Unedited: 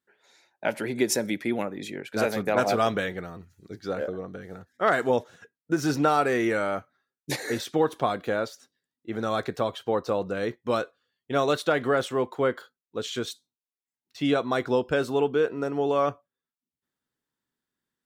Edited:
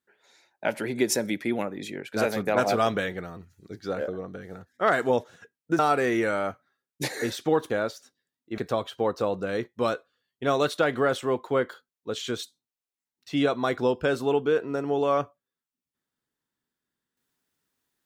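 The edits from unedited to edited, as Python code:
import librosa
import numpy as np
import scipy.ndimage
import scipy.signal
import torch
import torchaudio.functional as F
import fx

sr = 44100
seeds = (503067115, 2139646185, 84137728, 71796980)

y = fx.edit(x, sr, fx.cut(start_s=5.79, length_s=0.28),
    fx.cut(start_s=7.98, length_s=0.29),
    fx.cut(start_s=9.15, length_s=0.31), tone=tone)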